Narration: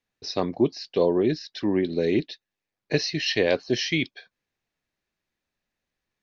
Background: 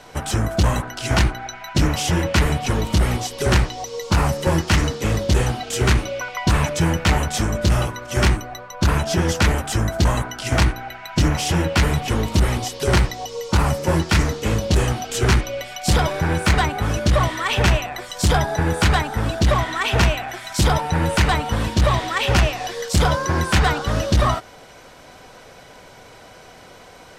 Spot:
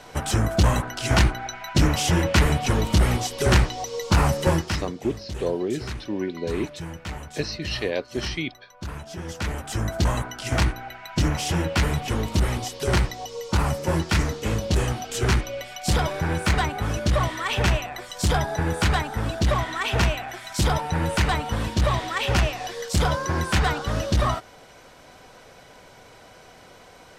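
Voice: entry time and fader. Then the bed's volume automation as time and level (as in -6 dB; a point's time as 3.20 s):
4.45 s, -4.5 dB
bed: 4.49 s -1 dB
4.92 s -16.5 dB
9.13 s -16.5 dB
9.89 s -4.5 dB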